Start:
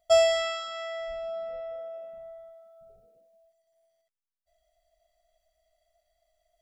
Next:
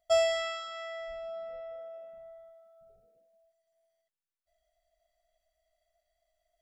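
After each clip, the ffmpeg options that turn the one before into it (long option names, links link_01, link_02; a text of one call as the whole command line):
ffmpeg -i in.wav -af "equalizer=frequency=1700:width_type=o:width=0.83:gain=3.5,volume=-5.5dB" out.wav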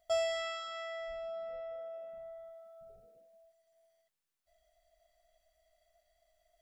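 ffmpeg -i in.wav -af "acompressor=threshold=-56dB:ratio=1.5,volume=5dB" out.wav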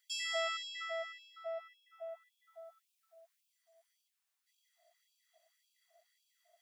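ffmpeg -i in.wav -af "afftfilt=real='re*gte(b*sr/1024,550*pow(2400/550,0.5+0.5*sin(2*PI*1.8*pts/sr)))':imag='im*gte(b*sr/1024,550*pow(2400/550,0.5+0.5*sin(2*PI*1.8*pts/sr)))':win_size=1024:overlap=0.75,volume=3.5dB" out.wav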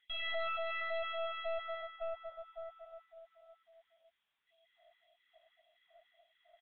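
ffmpeg -i in.wav -af "aecho=1:1:235|841:0.473|0.282,aeval=exprs='(tanh(158*val(0)+0.65)-tanh(0.65))/158':channel_layout=same,aresample=8000,aresample=44100,volume=9dB" out.wav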